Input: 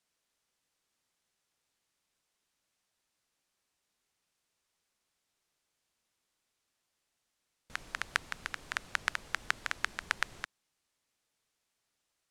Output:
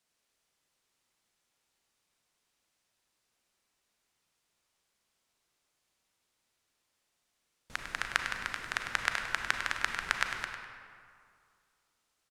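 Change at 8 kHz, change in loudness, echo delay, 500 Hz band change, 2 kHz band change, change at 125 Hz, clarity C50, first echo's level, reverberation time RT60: +2.5 dB, +3.0 dB, 101 ms, +3.5 dB, +3.0 dB, +3.5 dB, 3.5 dB, −9.0 dB, 2.3 s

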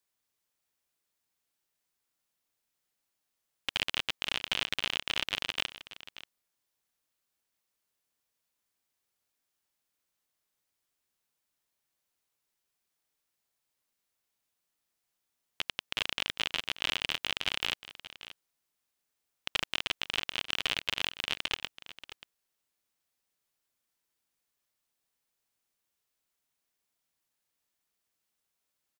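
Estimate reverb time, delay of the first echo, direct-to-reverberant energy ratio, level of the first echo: no reverb audible, 583 ms, no reverb audible, −15.0 dB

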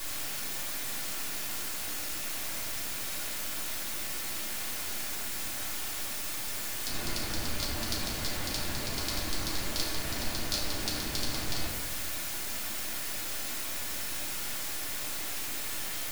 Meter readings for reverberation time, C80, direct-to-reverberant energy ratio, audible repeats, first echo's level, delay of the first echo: 1.2 s, 4.5 dB, −6.5 dB, no echo audible, no echo audible, no echo audible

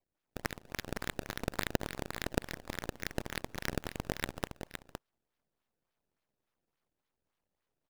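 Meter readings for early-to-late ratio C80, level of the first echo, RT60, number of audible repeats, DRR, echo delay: no reverb audible, −7.5 dB, no reverb audible, 1, no reverb audible, 513 ms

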